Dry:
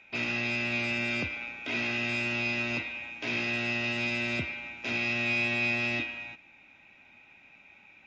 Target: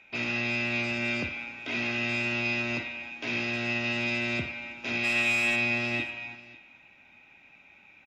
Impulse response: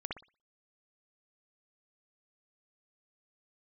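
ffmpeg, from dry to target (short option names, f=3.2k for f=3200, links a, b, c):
-filter_complex "[0:a]asplit=3[a][b][c];[a]afade=t=out:st=5.03:d=0.02[d];[b]asplit=2[e][f];[f]highpass=f=720:p=1,volume=13dB,asoftclip=type=tanh:threshold=-18.5dB[g];[e][g]amix=inputs=2:normalize=0,lowpass=f=5.6k:p=1,volume=-6dB,afade=t=in:st=5.03:d=0.02,afade=t=out:st=5.55:d=0.02[h];[c]afade=t=in:st=5.55:d=0.02[i];[d][h][i]amix=inputs=3:normalize=0,aecho=1:1:59|545:0.237|0.1"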